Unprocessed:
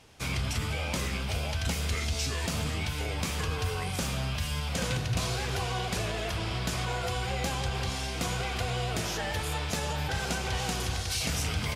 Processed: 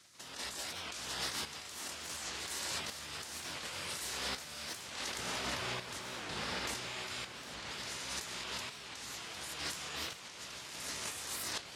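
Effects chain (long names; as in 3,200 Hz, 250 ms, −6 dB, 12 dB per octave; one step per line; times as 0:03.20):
meter weighting curve A
gate on every frequency bin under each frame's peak −10 dB weak
0:05.17–0:06.75: high-shelf EQ 2,400 Hz −10 dB
compressor whose output falls as the input rises −47 dBFS, ratio −1
shaped tremolo saw up 0.69 Hz, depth 70%
feedback delay with all-pass diffusion 1,172 ms, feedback 40%, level −8.5 dB
wow of a warped record 45 rpm, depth 250 cents
level +7 dB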